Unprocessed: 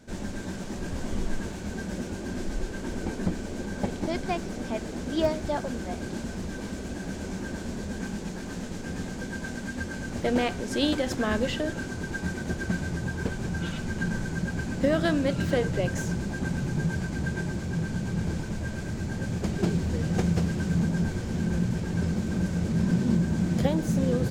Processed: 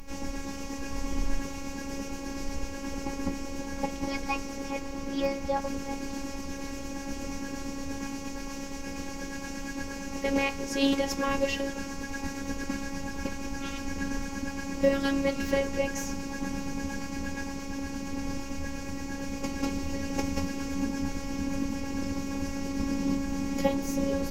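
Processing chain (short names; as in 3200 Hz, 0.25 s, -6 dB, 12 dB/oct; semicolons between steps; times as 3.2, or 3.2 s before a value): 4.79–5.62 high shelf 4800 Hz -6 dB; added noise brown -42 dBFS; flange 0.15 Hz, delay 3.1 ms, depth 5 ms, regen +68%; robotiser 276 Hz; ripple EQ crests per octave 0.8, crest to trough 9 dB; gain +7 dB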